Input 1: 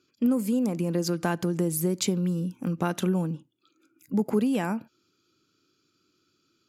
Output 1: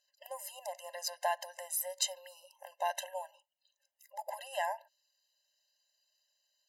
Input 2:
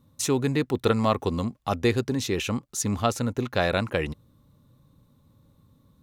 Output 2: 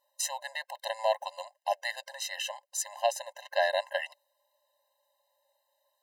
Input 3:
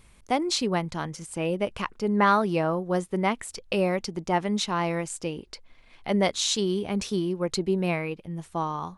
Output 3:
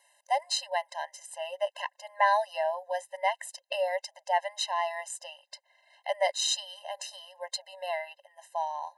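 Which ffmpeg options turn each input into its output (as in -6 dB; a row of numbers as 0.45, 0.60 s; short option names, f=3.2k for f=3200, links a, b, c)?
-af "afftfilt=real='re*eq(mod(floor(b*sr/1024/530),2),1)':imag='im*eq(mod(floor(b*sr/1024/530),2),1)':win_size=1024:overlap=0.75"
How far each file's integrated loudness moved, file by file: -10.5, -7.0, -4.5 LU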